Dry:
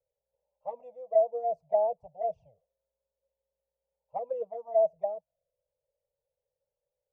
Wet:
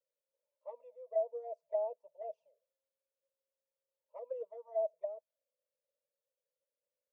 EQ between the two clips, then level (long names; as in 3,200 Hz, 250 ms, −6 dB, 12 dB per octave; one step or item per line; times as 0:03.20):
high-pass filter 420 Hz 24 dB per octave
Butterworth band-reject 760 Hz, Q 3.3
−6.5 dB